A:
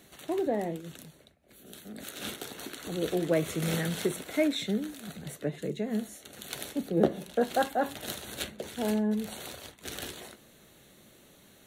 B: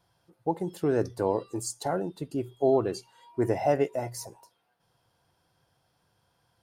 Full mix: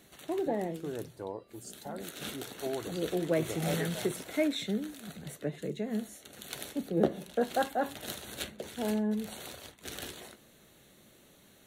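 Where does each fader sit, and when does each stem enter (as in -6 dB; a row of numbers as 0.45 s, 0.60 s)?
-2.5 dB, -13.0 dB; 0.00 s, 0.00 s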